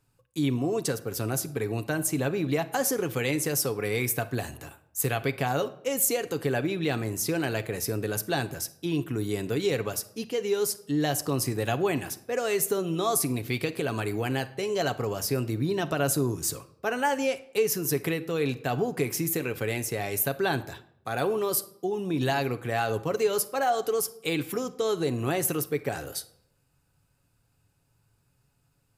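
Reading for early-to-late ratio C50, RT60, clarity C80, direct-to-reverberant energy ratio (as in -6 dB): 16.0 dB, 0.70 s, 19.5 dB, 8.5 dB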